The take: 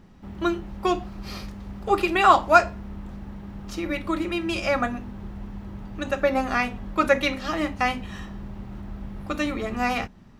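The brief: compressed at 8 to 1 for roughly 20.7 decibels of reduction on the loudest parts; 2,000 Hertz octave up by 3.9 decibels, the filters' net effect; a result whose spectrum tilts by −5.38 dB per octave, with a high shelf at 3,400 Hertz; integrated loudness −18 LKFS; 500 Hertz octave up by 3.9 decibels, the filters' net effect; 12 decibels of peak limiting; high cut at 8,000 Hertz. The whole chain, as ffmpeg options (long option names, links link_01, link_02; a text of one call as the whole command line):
ffmpeg -i in.wav -af "lowpass=8000,equalizer=frequency=500:width_type=o:gain=5,equalizer=frequency=2000:width_type=o:gain=7.5,highshelf=frequency=3400:gain=-8.5,acompressor=threshold=-30dB:ratio=8,volume=20.5dB,alimiter=limit=-8.5dB:level=0:latency=1" out.wav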